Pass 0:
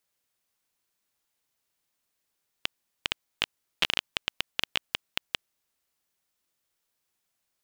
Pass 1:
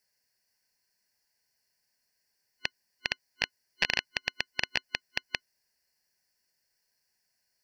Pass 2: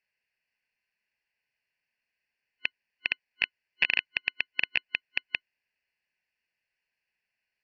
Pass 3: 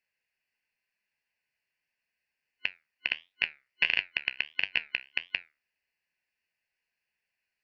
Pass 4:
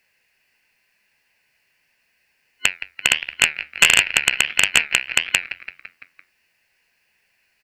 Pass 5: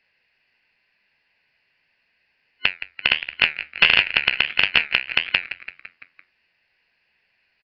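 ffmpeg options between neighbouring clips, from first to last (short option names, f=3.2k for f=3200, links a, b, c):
-filter_complex "[0:a]acrossover=split=5400[a][b];[b]acompressor=threshold=-48dB:ratio=4:attack=1:release=60[c];[a][c]amix=inputs=2:normalize=0,superequalizer=6b=0.562:10b=0.398:11b=2:13b=0.355:14b=2.82"
-af "lowpass=f=2.6k:t=q:w=5.3,volume=-6.5dB"
-af "flanger=delay=10:depth=5.9:regen=71:speed=1.5:shape=triangular,volume=3.5dB"
-filter_complex "[0:a]asplit=6[a][b][c][d][e][f];[b]adelay=169,afreqshift=-74,volume=-19dB[g];[c]adelay=338,afreqshift=-148,volume=-23.6dB[h];[d]adelay=507,afreqshift=-222,volume=-28.2dB[i];[e]adelay=676,afreqshift=-296,volume=-32.7dB[j];[f]adelay=845,afreqshift=-370,volume=-37.3dB[k];[a][g][h][i][j][k]amix=inputs=6:normalize=0,aeval=exprs='0.376*sin(PI/2*2.51*val(0)/0.376)':c=same,volume=7dB"
-af "aresample=11025,aresample=44100,volume=-1dB"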